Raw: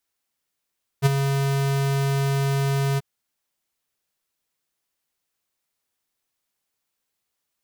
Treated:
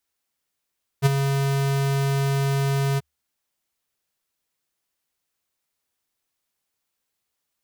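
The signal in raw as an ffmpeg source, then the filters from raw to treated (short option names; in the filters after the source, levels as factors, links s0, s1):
-f lavfi -i "aevalsrc='0.2*(2*lt(mod(138*t,1),0.5)-1)':d=1.986:s=44100,afade=t=in:d=0.039,afade=t=out:st=0.039:d=0.02:silence=0.398,afade=t=out:st=1.96:d=0.026"
-af "equalizer=f=72:w=7.6:g=6"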